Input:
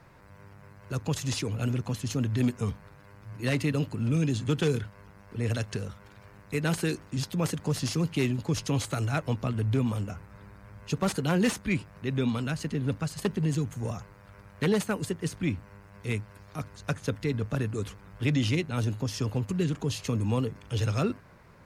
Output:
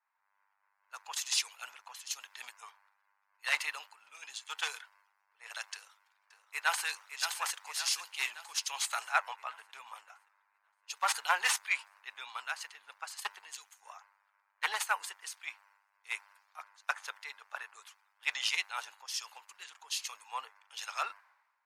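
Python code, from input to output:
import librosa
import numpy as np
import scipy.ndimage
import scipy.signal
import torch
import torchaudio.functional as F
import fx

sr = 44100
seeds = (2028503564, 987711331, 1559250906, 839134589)

y = fx.echo_throw(x, sr, start_s=5.73, length_s=1.13, ms=570, feedback_pct=65, wet_db=-4.5)
y = scipy.signal.sosfilt(scipy.signal.cheby1(4, 1.0, 840.0, 'highpass', fs=sr, output='sos'), y)
y = fx.band_widen(y, sr, depth_pct=100)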